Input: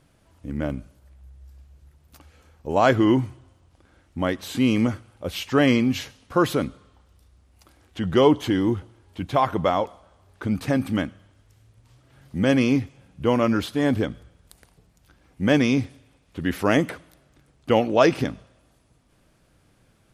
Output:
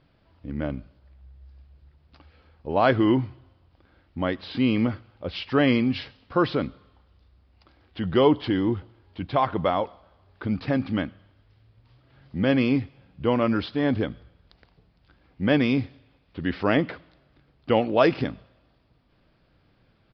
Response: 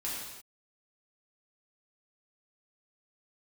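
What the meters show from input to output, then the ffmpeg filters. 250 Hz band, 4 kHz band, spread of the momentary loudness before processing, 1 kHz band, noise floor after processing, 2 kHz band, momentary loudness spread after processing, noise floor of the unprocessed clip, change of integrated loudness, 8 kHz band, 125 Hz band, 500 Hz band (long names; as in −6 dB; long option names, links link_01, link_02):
−2.0 dB, −2.0 dB, 17 LU, −2.0 dB, −63 dBFS, −2.0 dB, 17 LU, −61 dBFS, −2.0 dB, below −25 dB, −2.0 dB, −2.0 dB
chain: -af "aresample=11025,aresample=44100,volume=-2dB"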